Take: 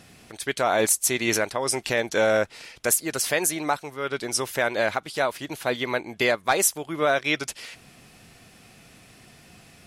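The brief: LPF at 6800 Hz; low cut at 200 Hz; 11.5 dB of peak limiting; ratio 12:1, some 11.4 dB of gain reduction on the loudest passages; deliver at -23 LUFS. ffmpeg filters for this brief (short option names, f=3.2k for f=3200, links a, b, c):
-af "highpass=200,lowpass=6.8k,acompressor=threshold=-28dB:ratio=12,volume=14.5dB,alimiter=limit=-11dB:level=0:latency=1"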